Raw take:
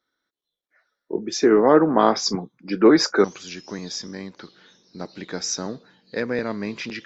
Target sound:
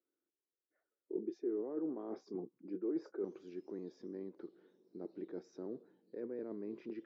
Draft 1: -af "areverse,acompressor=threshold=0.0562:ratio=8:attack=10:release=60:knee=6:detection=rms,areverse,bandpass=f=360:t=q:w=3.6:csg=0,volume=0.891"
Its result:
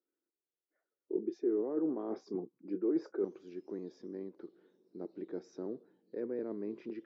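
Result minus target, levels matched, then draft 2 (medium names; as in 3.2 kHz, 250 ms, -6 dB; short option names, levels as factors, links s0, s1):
compression: peak gain reduction -5.5 dB
-af "areverse,acompressor=threshold=0.0266:ratio=8:attack=10:release=60:knee=6:detection=rms,areverse,bandpass=f=360:t=q:w=3.6:csg=0,volume=0.891"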